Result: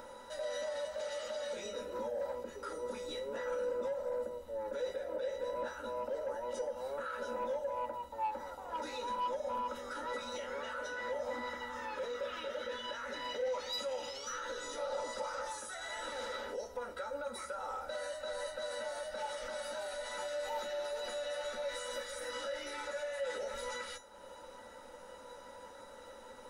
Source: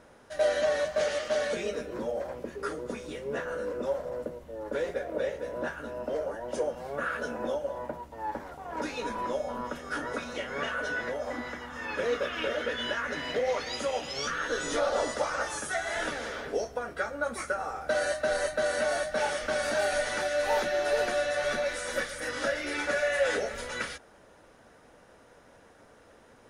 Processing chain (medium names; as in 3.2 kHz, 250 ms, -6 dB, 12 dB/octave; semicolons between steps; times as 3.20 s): treble shelf 2.7 kHz +9.5 dB; compression, threshold -30 dBFS, peak gain reduction 9.5 dB; peak limiter -26.5 dBFS, peak gain reduction 6.5 dB; upward compressor, threshold -40 dBFS; feedback comb 990 Hz, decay 0.31 s, mix 90%; small resonant body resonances 530/870/1300/3800 Hz, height 14 dB, ringing for 30 ms; saturation -37.5 dBFS, distortion -19 dB; on a send: reverberation, pre-delay 3 ms, DRR 12 dB; on the sum: trim +6.5 dB